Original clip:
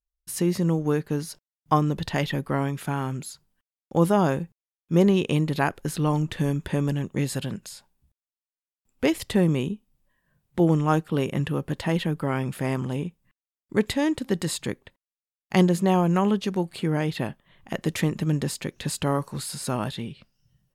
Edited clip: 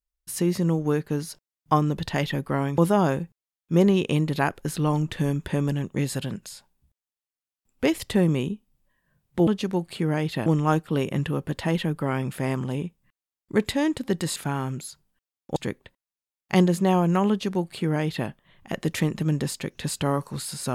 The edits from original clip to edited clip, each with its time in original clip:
2.78–3.98 s: move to 14.57 s
16.30–17.29 s: copy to 10.67 s

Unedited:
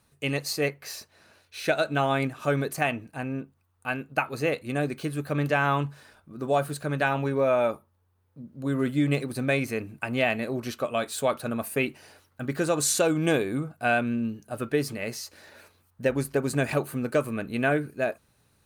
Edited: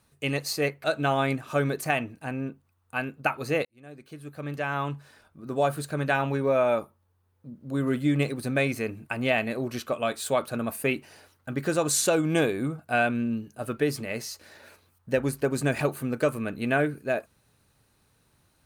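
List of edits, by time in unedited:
0.84–1.76 s: delete
4.57–6.61 s: fade in

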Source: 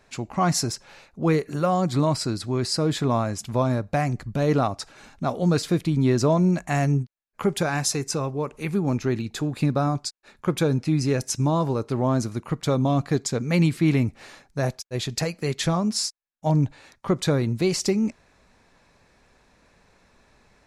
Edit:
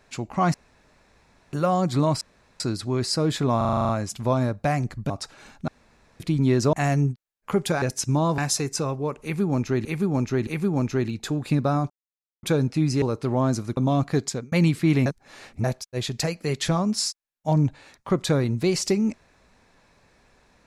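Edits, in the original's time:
0.54–1.53 s: room tone
2.21 s: insert room tone 0.39 s
3.18 s: stutter 0.04 s, 9 plays
4.39–4.68 s: delete
5.26–5.78 s: room tone
6.31–6.64 s: delete
8.58–9.20 s: loop, 3 plays
10.01–10.54 s: mute
11.13–11.69 s: move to 7.73 s
12.44–12.75 s: delete
13.25–13.50 s: fade out
14.04–14.62 s: reverse

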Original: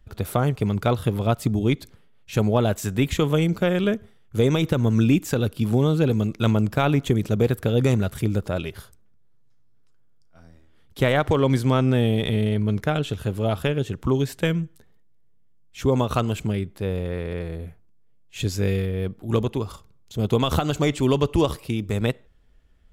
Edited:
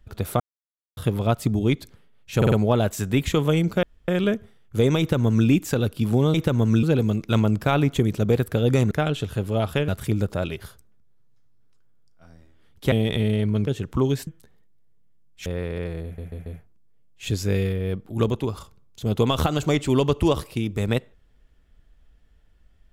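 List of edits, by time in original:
0.40–0.97 s: mute
2.37 s: stutter 0.05 s, 4 plays
3.68 s: insert room tone 0.25 s
4.59–5.08 s: copy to 5.94 s
11.06–12.05 s: delete
12.80–13.77 s: move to 8.02 s
14.37–14.63 s: delete
15.82–17.01 s: delete
17.59 s: stutter 0.14 s, 4 plays

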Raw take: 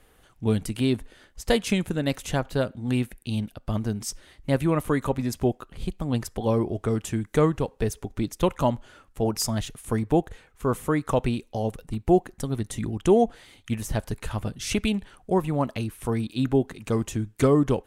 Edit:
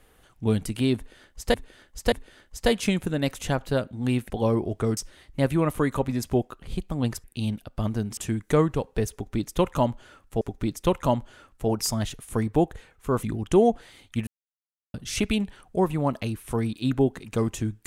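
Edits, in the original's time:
0.96–1.54 s: loop, 3 plays
3.14–4.07 s: swap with 6.34–7.01 s
7.97–9.25 s: loop, 2 plays
10.79–12.77 s: delete
13.81–14.48 s: mute

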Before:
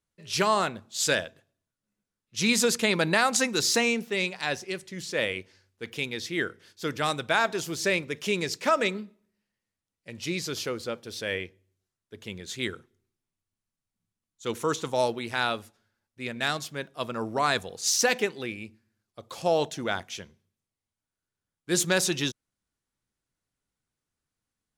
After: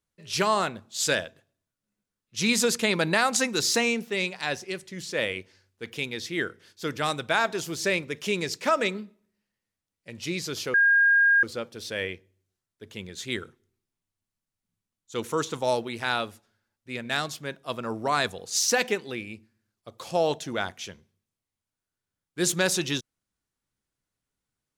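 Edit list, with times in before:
10.74 s: add tone 1.62 kHz -16 dBFS 0.69 s

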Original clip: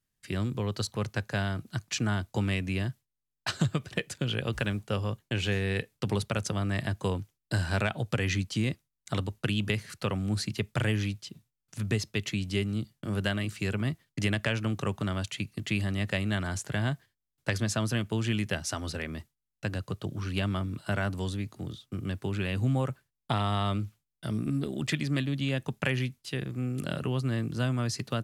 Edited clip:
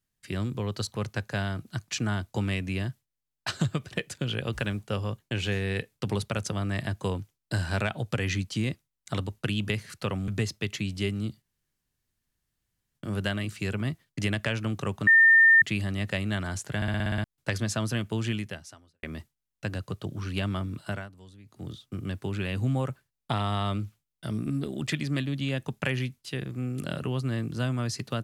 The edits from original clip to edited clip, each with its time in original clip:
10.28–11.81 s: delete
12.95 s: insert room tone 1.53 s
15.07–15.62 s: bleep 1.81 kHz -13.5 dBFS
16.76 s: stutter in place 0.06 s, 8 plays
18.28–19.03 s: fade out quadratic
20.84–21.69 s: dip -18 dB, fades 0.25 s

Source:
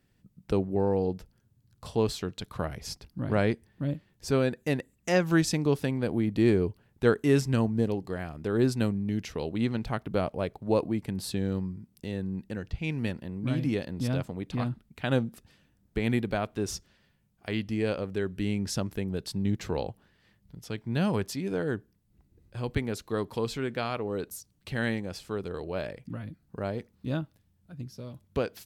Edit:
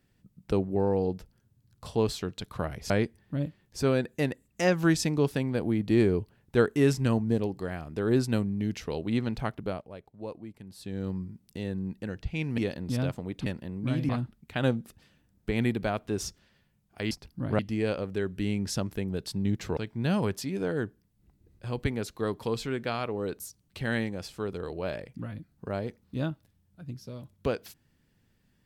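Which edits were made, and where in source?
2.90–3.38 s: move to 17.59 s
9.93–11.69 s: dip -13.5 dB, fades 0.44 s
13.06–13.69 s: move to 14.57 s
19.77–20.68 s: delete

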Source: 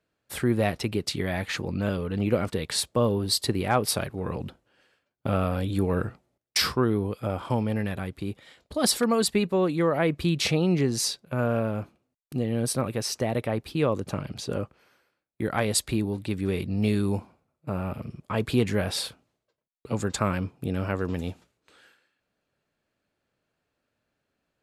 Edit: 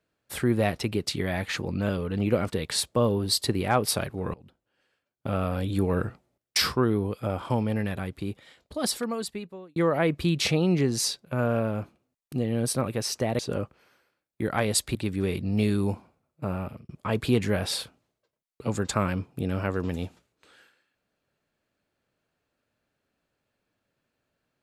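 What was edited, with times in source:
4.34–5.75 s: fade in linear, from -23 dB
8.24–9.76 s: fade out
13.39–14.39 s: delete
15.95–16.20 s: delete
17.71–18.14 s: fade out equal-power

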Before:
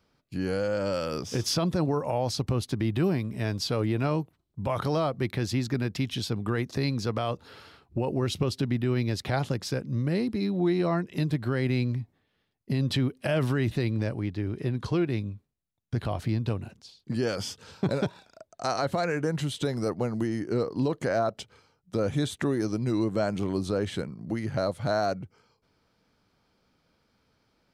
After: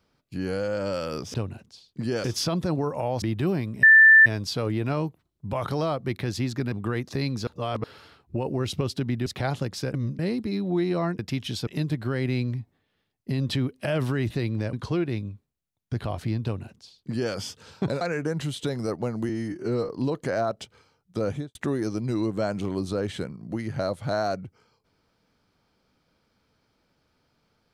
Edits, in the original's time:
2.32–2.79 s: delete
3.40 s: add tone 1.77 kHz -9.5 dBFS 0.43 s
5.86–6.34 s: move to 11.08 s
7.09–7.46 s: reverse
8.88–9.15 s: delete
9.83–10.08 s: reverse
14.14–14.74 s: delete
16.45–17.35 s: copy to 1.34 s
18.02–18.99 s: delete
20.27–20.67 s: stretch 1.5×
22.06–22.33 s: studio fade out

